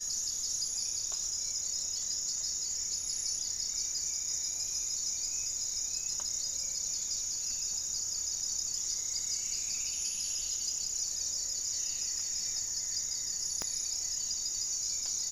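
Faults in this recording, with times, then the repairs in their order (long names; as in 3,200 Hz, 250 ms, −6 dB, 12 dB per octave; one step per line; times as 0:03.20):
0:13.62: click −19 dBFS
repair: click removal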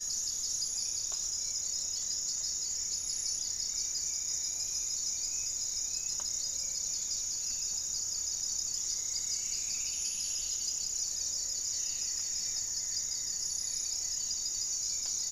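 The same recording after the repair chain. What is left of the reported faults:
0:13.62: click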